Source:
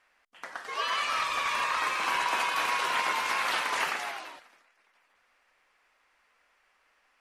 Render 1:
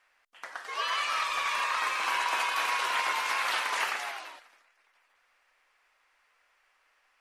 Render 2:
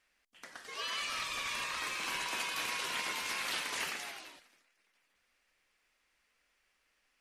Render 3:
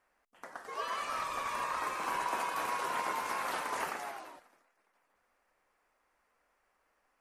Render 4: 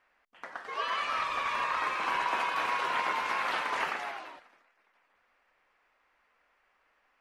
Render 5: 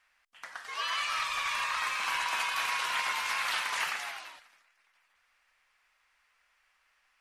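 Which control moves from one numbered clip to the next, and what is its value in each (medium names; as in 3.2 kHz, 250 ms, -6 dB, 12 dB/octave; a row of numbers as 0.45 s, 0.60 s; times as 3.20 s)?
peaking EQ, frequency: 130 Hz, 960 Hz, 3.1 kHz, 12 kHz, 350 Hz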